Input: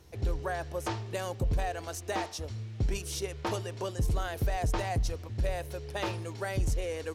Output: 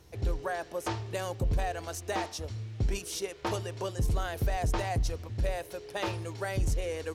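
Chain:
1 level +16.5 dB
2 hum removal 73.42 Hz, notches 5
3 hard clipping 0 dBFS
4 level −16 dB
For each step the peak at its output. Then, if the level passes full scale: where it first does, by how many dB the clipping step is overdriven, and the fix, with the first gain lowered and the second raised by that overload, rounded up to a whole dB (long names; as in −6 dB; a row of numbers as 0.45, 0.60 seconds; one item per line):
−6.0, −4.5, −4.5, −20.5 dBFS
no step passes full scale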